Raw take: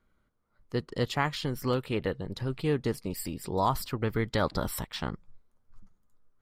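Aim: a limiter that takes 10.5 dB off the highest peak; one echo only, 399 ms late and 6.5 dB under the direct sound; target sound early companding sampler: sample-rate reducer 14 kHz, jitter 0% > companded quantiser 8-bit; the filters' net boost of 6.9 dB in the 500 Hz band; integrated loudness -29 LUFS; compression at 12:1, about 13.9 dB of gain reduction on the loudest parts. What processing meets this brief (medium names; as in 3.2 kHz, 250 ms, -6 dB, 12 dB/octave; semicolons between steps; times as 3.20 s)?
peaking EQ 500 Hz +8 dB; compression 12:1, threshold -32 dBFS; peak limiter -29 dBFS; delay 399 ms -6.5 dB; sample-rate reducer 14 kHz, jitter 0%; companded quantiser 8-bit; trim +11.5 dB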